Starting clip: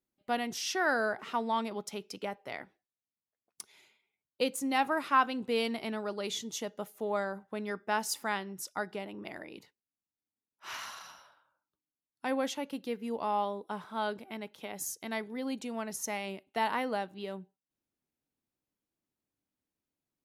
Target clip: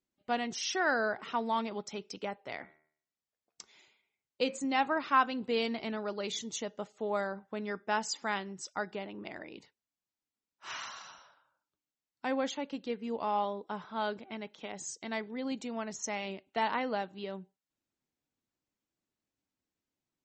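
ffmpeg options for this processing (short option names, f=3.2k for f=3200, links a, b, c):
-filter_complex "[0:a]asplit=3[a][b][c];[a]afade=t=out:st=2.59:d=0.02[d];[b]bandreject=f=76.79:t=h:w=4,bandreject=f=153.58:t=h:w=4,bandreject=f=230.37:t=h:w=4,bandreject=f=307.16:t=h:w=4,bandreject=f=383.95:t=h:w=4,bandreject=f=460.74:t=h:w=4,bandreject=f=537.53:t=h:w=4,bandreject=f=614.32:t=h:w=4,bandreject=f=691.11:t=h:w=4,bandreject=f=767.9:t=h:w=4,bandreject=f=844.69:t=h:w=4,bandreject=f=921.48:t=h:w=4,bandreject=f=998.27:t=h:w=4,bandreject=f=1.07506k:t=h:w=4,bandreject=f=1.15185k:t=h:w=4,bandreject=f=1.22864k:t=h:w=4,bandreject=f=1.30543k:t=h:w=4,bandreject=f=1.38222k:t=h:w=4,bandreject=f=1.45901k:t=h:w=4,bandreject=f=1.5358k:t=h:w=4,bandreject=f=1.61259k:t=h:w=4,bandreject=f=1.68938k:t=h:w=4,bandreject=f=1.76617k:t=h:w=4,bandreject=f=1.84296k:t=h:w=4,bandreject=f=1.91975k:t=h:w=4,bandreject=f=1.99654k:t=h:w=4,bandreject=f=2.07333k:t=h:w=4,bandreject=f=2.15012k:t=h:w=4,bandreject=f=2.22691k:t=h:w=4,bandreject=f=2.3037k:t=h:w=4,bandreject=f=2.38049k:t=h:w=4,bandreject=f=2.45728k:t=h:w=4,bandreject=f=2.53407k:t=h:w=4,bandreject=f=2.61086k:t=h:w=4,afade=t=in:st=2.59:d=0.02,afade=t=out:st=4.57:d=0.02[e];[c]afade=t=in:st=4.57:d=0.02[f];[d][e][f]amix=inputs=3:normalize=0" -ar 48000 -c:a libmp3lame -b:a 32k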